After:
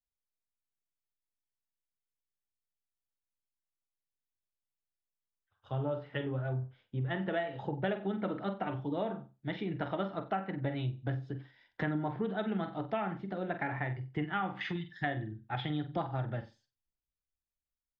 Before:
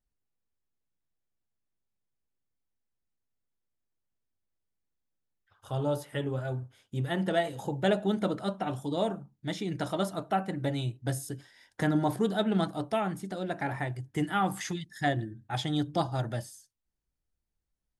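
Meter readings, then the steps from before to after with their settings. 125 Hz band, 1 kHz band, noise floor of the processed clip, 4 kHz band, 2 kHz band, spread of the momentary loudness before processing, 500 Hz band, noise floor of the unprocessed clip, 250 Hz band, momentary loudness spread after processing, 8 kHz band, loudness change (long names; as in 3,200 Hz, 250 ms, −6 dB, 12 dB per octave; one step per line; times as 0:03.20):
−3.0 dB, −5.0 dB, below −85 dBFS, −8.5 dB, −2.0 dB, 9 LU, −5.5 dB, −84 dBFS, −5.5 dB, 5 LU, below −30 dB, −4.5 dB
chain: low-pass filter 3,800 Hz 24 dB per octave
flutter between parallel walls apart 7.9 metres, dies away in 0.28 s
dynamic equaliser 2,300 Hz, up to +5 dB, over −43 dBFS, Q 0.77
downward compressor 5 to 1, threshold −31 dBFS, peak gain reduction 11 dB
treble cut that deepens with the level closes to 2,600 Hz, closed at −32.5 dBFS
multiband upward and downward expander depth 40%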